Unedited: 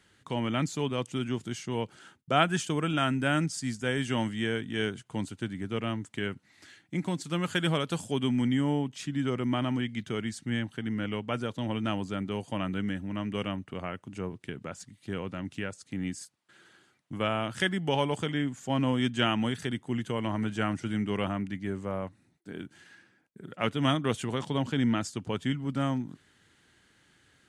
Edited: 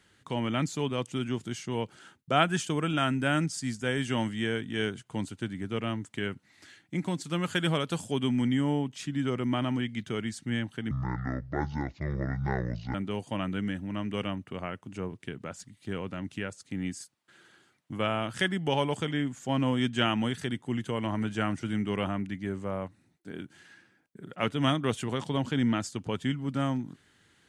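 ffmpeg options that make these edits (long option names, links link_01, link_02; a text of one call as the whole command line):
ffmpeg -i in.wav -filter_complex "[0:a]asplit=3[link_01][link_02][link_03];[link_01]atrim=end=10.914[link_04];[link_02]atrim=start=10.91:end=12.15,asetpts=PTS-STARTPTS,asetrate=26901,aresample=44100[link_05];[link_03]atrim=start=12.146[link_06];[link_04][link_05]acrossfade=duration=0.004:curve1=hsin:curve2=hsin[link_07];[link_07][link_06]acrossfade=duration=0.004:curve1=hsin:curve2=hsin" out.wav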